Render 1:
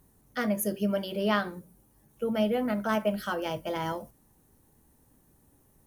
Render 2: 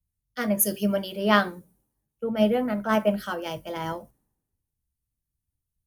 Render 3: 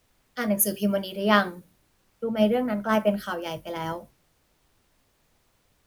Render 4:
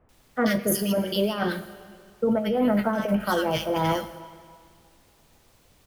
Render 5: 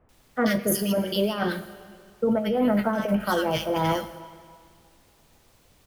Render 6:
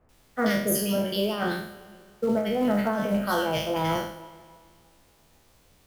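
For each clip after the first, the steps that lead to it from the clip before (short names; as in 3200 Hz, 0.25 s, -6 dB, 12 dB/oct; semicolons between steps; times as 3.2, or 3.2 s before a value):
three-band expander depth 100%; gain +2 dB
added noise pink -67 dBFS
negative-ratio compressor -27 dBFS, ratio -1; bands offset in time lows, highs 90 ms, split 1600 Hz; reverb RT60 2.2 s, pre-delay 3 ms, DRR 12.5 dB; gain +4.5 dB
nothing audible
spectral trails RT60 0.61 s; in parallel at -6 dB: short-mantissa float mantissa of 2-bit; on the sum: gain -6.5 dB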